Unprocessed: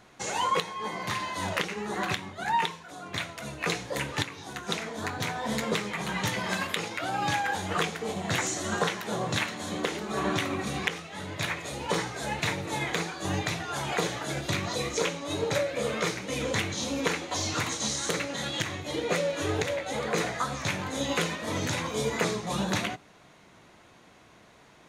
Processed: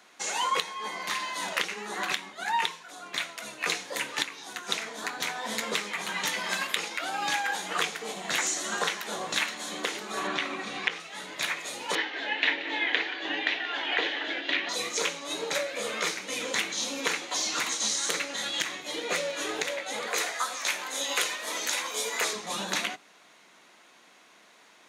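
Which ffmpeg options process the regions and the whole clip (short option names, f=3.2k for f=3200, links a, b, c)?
-filter_complex "[0:a]asettb=1/sr,asplit=3[a][b][c];[a]atrim=end=10.274[d];[b]atrim=start=10.27:end=11,asetpts=PTS-STARTPTS,afade=t=in:d=0.004:c=qsin,afade=t=out:st=0.726:d=0.004:c=qsin,acrossover=split=4700[e][f];[f]acompressor=threshold=-56dB:ratio=4:attack=1:release=60[g];[e][g]amix=inputs=2:normalize=0,lowpass=9.9k[h];[c]atrim=start=10.996[i];[d][h]acrossfade=d=0.004:c1=hsin:c2=qsin[j];[j][i]acrossfade=d=0.004:c1=qsin:c2=hsin,asettb=1/sr,asplit=3[k][l][m];[k]atrim=end=11.954[n];[l]atrim=start=11.95:end=14.69,asetpts=PTS-STARTPTS,afade=t=in:d=0.004:c=qsin,afade=t=out:st=2.736:d=0.004:c=qsin,highpass=f=270:w=0.5412,highpass=f=270:w=1.3066,equalizer=f=280:t=q:w=4:g=9,equalizer=f=1.2k:t=q:w=4:g=-7,equalizer=f=1.8k:t=q:w=4:g=8,equalizer=f=3k:t=q:w=4:g=8,lowpass=f=3.8k:w=0.5412,lowpass=f=3.8k:w=1.3066,aecho=1:1:180:0.2,atrim=end_sample=120834[o];[m]atrim=start=14.686[p];[n][o]acrossfade=d=0.004:c1=hsin:c2=qsin[q];[q][p]acrossfade=d=0.004:c1=qsin:c2=hsin,asettb=1/sr,asplit=3[r][s][t];[r]atrim=end=20.074[u];[s]atrim=start=20.07:end=22.33,asetpts=PTS-STARTPTS,afade=t=in:d=0.004:c=qsin,afade=t=out:st=2.256:d=0.004:c=qsin,highpass=390,highshelf=f=9.3k:g=8.5[v];[t]atrim=start=22.326[w];[u][v]acrossfade=d=0.004:c1=hsin:c2=qsin[x];[x][w]acrossfade=d=0.004:c1=qsin:c2=hsin,highpass=f=200:w=0.5412,highpass=f=200:w=1.3066,tiltshelf=f=880:g=-5.5,volume=-2dB"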